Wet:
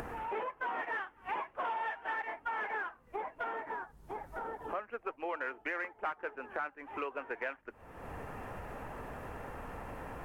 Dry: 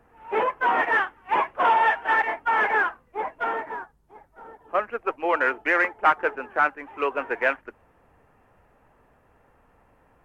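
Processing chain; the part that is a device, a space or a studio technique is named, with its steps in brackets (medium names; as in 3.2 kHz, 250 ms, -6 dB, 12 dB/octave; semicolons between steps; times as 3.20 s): upward and downward compression (upward compressor, threshold -26 dBFS; compression 4:1, threshold -36 dBFS, peak gain reduction 18 dB); trim -1.5 dB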